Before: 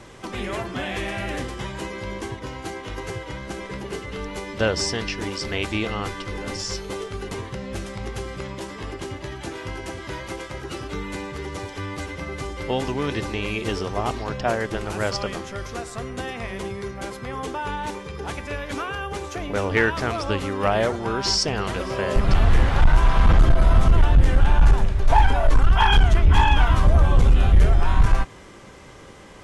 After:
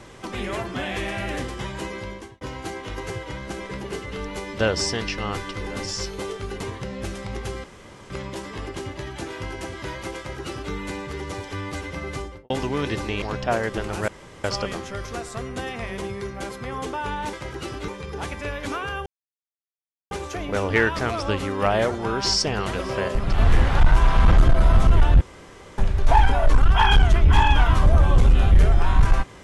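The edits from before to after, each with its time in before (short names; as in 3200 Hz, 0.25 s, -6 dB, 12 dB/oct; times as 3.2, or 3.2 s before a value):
1.96–2.41 fade out
5.18–5.89 cut
8.35 insert room tone 0.46 s
10.42–10.97 copy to 17.94
12.41–12.75 studio fade out
13.47–14.19 cut
15.05 insert room tone 0.36 s
19.12 insert silence 1.05 s
22.09–22.39 gain -4.5 dB
24.22–24.79 room tone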